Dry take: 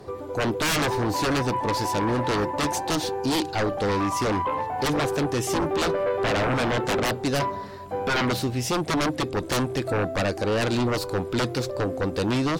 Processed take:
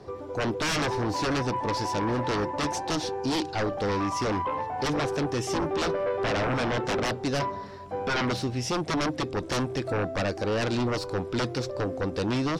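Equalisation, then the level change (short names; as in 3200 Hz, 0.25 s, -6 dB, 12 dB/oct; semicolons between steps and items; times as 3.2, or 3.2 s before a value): air absorption 50 m; bell 5500 Hz +6 dB 0.25 oct; -3.0 dB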